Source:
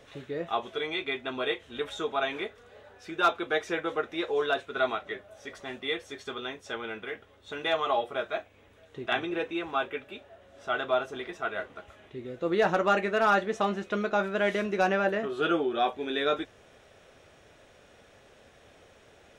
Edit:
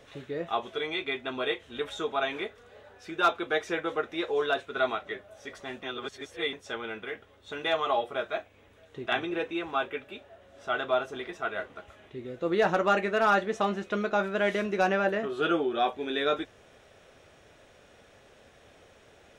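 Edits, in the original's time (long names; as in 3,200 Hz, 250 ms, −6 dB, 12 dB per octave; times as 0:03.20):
0:05.83–0:06.53: reverse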